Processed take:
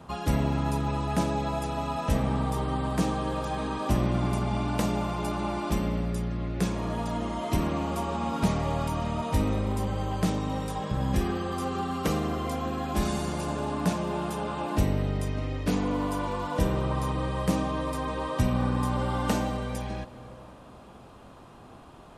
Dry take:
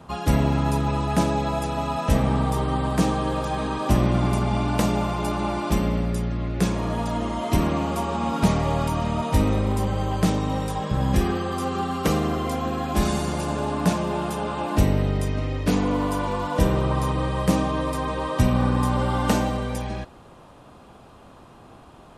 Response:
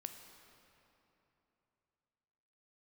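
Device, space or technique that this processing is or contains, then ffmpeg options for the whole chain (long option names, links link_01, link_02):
ducked reverb: -filter_complex "[0:a]asplit=3[link_01][link_02][link_03];[1:a]atrim=start_sample=2205[link_04];[link_02][link_04]afir=irnorm=-1:irlink=0[link_05];[link_03]apad=whole_len=977916[link_06];[link_05][link_06]sidechaincompress=threshold=-31dB:ratio=8:attack=16:release=419,volume=1dB[link_07];[link_01][link_07]amix=inputs=2:normalize=0,volume=-6.5dB"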